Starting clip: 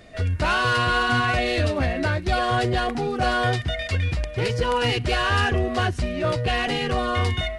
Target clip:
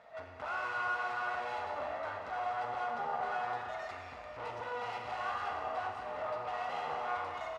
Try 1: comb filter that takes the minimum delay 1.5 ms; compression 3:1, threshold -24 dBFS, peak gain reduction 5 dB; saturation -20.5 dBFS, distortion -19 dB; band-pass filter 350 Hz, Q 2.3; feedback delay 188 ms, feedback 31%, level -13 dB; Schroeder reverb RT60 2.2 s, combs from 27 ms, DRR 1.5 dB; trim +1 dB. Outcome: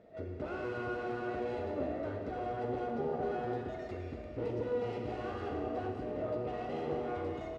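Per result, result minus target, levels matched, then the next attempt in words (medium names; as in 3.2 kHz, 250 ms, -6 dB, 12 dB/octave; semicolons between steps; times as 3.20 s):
250 Hz band +17.0 dB; saturation: distortion -9 dB
comb filter that takes the minimum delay 1.5 ms; compression 3:1, threshold -24 dBFS, peak gain reduction 5 dB; saturation -20.5 dBFS, distortion -19 dB; band-pass filter 960 Hz, Q 2.3; feedback delay 188 ms, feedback 31%, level -13 dB; Schroeder reverb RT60 2.2 s, combs from 27 ms, DRR 1.5 dB; trim +1 dB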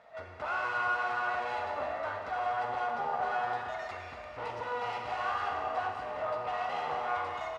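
saturation: distortion -9 dB
comb filter that takes the minimum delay 1.5 ms; compression 3:1, threshold -24 dBFS, peak gain reduction 5 dB; saturation -29 dBFS, distortion -10 dB; band-pass filter 960 Hz, Q 2.3; feedback delay 188 ms, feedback 31%, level -13 dB; Schroeder reverb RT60 2.2 s, combs from 27 ms, DRR 1.5 dB; trim +1 dB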